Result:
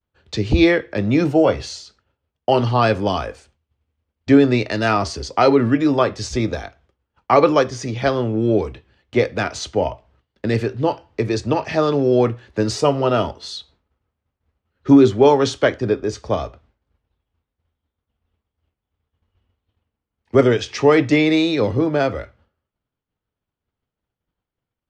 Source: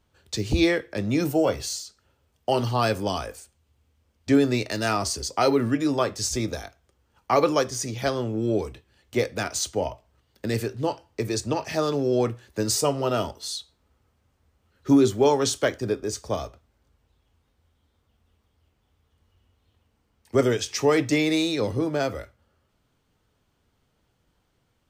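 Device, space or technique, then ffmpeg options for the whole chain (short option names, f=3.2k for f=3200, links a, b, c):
hearing-loss simulation: -af "lowpass=3.5k,agate=range=-33dB:threshold=-56dB:ratio=3:detection=peak,volume=7dB"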